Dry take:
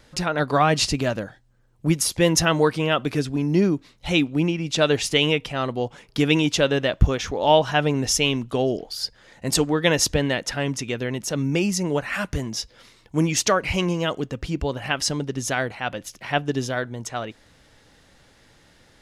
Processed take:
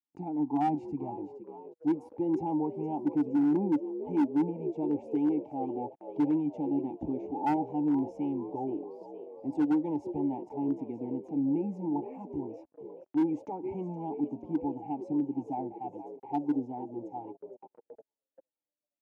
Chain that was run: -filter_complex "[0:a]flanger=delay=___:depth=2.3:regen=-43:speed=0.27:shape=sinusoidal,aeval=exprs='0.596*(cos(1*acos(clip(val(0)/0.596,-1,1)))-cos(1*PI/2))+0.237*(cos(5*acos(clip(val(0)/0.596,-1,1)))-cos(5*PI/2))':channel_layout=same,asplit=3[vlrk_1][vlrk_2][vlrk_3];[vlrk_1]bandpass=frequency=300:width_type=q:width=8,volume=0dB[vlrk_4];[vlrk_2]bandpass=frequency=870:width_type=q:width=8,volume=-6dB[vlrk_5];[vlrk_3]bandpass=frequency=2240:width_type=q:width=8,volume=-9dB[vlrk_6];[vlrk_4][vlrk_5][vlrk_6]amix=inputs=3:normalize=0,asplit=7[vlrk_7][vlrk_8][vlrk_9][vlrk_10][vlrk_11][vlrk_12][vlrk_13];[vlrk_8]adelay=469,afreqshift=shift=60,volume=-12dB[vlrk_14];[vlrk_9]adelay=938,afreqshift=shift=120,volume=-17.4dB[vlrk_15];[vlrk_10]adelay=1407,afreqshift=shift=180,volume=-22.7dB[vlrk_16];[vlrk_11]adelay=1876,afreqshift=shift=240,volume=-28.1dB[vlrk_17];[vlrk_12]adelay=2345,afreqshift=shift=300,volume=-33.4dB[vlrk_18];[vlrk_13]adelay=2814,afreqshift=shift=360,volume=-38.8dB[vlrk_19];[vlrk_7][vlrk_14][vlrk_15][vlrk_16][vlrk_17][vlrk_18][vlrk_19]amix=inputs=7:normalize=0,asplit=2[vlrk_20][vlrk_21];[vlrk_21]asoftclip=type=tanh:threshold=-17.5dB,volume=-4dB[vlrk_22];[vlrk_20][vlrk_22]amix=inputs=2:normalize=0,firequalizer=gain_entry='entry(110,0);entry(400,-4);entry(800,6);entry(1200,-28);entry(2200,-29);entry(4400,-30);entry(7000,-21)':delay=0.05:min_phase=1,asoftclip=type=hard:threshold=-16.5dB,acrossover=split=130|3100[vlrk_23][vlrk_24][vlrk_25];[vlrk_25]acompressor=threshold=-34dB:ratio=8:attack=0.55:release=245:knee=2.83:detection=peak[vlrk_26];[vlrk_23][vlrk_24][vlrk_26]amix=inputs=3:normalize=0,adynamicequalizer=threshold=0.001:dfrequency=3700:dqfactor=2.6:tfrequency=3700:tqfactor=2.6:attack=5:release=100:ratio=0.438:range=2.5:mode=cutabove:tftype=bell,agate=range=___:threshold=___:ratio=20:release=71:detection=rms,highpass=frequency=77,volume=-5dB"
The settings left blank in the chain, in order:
0.4, -42dB, -44dB